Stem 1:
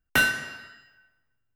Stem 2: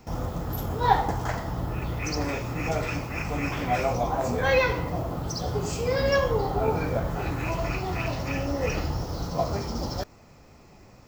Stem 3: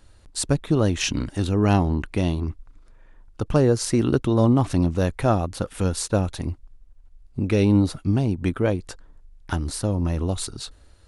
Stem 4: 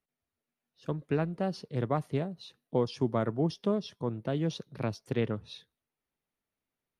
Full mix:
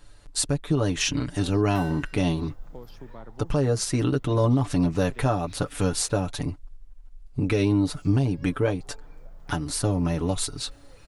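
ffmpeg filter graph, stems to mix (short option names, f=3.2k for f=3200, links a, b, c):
-filter_complex "[0:a]adelay=1600,volume=-15dB[a];[1:a]equalizer=f=11k:t=o:w=0.77:g=-2.5,acompressor=threshold=-33dB:ratio=12,adelay=2300,volume=-17.5dB,asplit=3[b][c][d];[b]atrim=end=6.31,asetpts=PTS-STARTPTS,afade=t=out:st=6.306:d=0.004:c=hsin[e];[c]atrim=start=6.31:end=7.56,asetpts=PTS-STARTPTS,volume=0[f];[d]atrim=start=7.56,asetpts=PTS-STARTPTS,afade=t=in:d=0.004:c=hsin[g];[e][f][g]concat=n=3:v=0:a=1[h];[2:a]aecho=1:1:6.9:0.72,volume=1dB[i];[3:a]acompressor=threshold=-34dB:ratio=2.5,volume=-7dB[j];[a][h][i][j]amix=inputs=4:normalize=0,equalizer=f=200:w=0.4:g=-2.5,alimiter=limit=-12.5dB:level=0:latency=1:release=279"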